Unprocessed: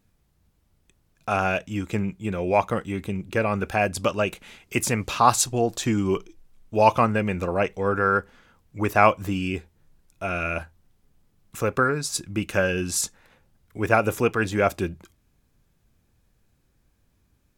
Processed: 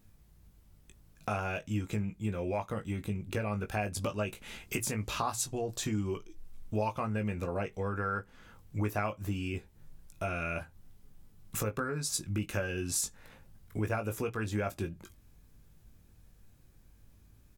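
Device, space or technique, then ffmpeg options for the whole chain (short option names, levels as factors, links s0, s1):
ASMR close-microphone chain: -filter_complex "[0:a]lowshelf=f=150:g=8,acompressor=threshold=0.02:ratio=4,highshelf=f=8400:g=6,bandreject=f=60:t=h:w=6,bandreject=f=120:t=h:w=6,asplit=2[s0][s1];[s1]adelay=19,volume=0.447[s2];[s0][s2]amix=inputs=2:normalize=0"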